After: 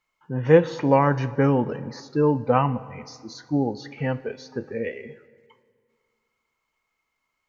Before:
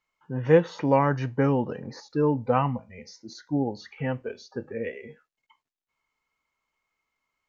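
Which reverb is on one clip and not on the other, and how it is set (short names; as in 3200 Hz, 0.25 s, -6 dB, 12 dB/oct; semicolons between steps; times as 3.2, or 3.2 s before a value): plate-style reverb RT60 2.1 s, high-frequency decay 0.7×, DRR 16 dB; gain +3 dB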